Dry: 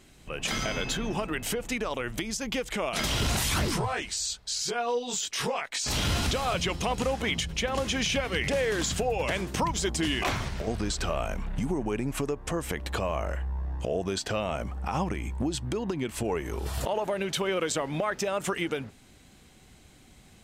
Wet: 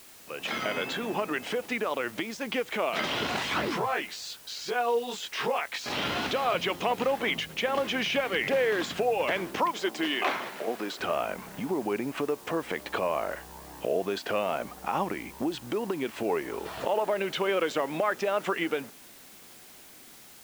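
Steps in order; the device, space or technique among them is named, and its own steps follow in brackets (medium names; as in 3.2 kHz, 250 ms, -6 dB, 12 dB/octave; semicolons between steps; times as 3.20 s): dictaphone (band-pass 280–3000 Hz; level rider gain up to 4.5 dB; wow and flutter; white noise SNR 21 dB); 9.58–11.00 s: high-pass 260 Hz 12 dB/octave; trim -2 dB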